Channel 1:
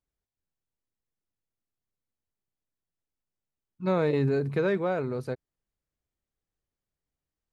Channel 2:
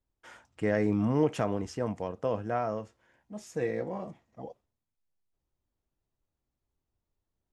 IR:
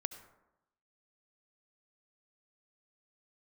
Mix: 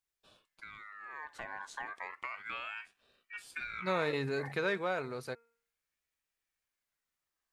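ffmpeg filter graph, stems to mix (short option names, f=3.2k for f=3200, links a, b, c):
-filter_complex "[0:a]tiltshelf=f=700:g=-8.5,bandreject=f=232.2:t=h:w=4,bandreject=f=464.4:t=h:w=4,bandreject=f=696.6:t=h:w=4,bandreject=f=928.8:t=h:w=4,bandreject=f=1.161k:t=h:w=4,bandreject=f=1.3932k:t=h:w=4,bandreject=f=1.6254k:t=h:w=4,bandreject=f=1.8576k:t=h:w=4,bandreject=f=2.0898k:t=h:w=4,bandreject=f=2.322k:t=h:w=4,bandreject=f=2.5542k:t=h:w=4,volume=-5dB[a];[1:a]highpass=f=140:w=0.5412,highpass=f=140:w=1.3066,acompressor=threshold=-34dB:ratio=8,aeval=exprs='val(0)*sin(2*PI*1700*n/s+1700*0.25/0.32*sin(2*PI*0.32*n/s))':c=same,volume=-1dB,afade=t=in:st=0.98:d=0.6:silence=0.354813[b];[a][b]amix=inputs=2:normalize=0"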